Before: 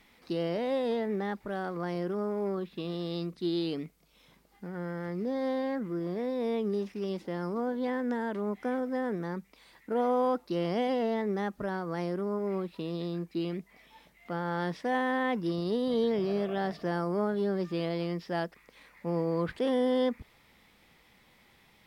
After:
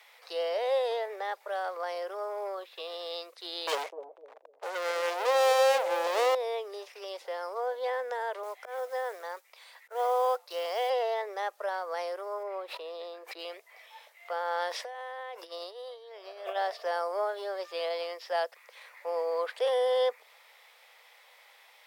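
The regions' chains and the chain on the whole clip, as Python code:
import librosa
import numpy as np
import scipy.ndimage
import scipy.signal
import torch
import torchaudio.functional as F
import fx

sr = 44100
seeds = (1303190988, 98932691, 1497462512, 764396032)

y = fx.chain(x, sr, fx.env_lowpass(base_hz=440.0, full_db=-30.5),
    fx.leveller(passes=5),
    fx.echo_bbd(ms=252, stages=1024, feedback_pct=32, wet_db=-7.5), at=(3.67, 6.35))
y = fx.chain(y, sr, fx.quant_float(bits=4),
    fx.auto_swell(attack_ms=140.0),
    fx.highpass(hz=430.0, slope=6), at=(8.43, 10.9))
y = fx.chain(y, sr, fx.high_shelf(hz=2900.0, db=-10.0),
    fx.sustainer(db_per_s=96.0), at=(12.43, 13.39))
y = fx.chain(y, sr, fx.highpass(hz=150.0, slope=12),
    fx.over_compress(threshold_db=-36.0, ratio=-0.5), at=(14.69, 16.56))
y = fx.dynamic_eq(y, sr, hz=1600.0, q=0.88, threshold_db=-48.0, ratio=4.0, max_db=-4)
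y = scipy.signal.sosfilt(scipy.signal.butter(8, 500.0, 'highpass', fs=sr, output='sos'), y)
y = F.gain(torch.from_numpy(y), 5.5).numpy()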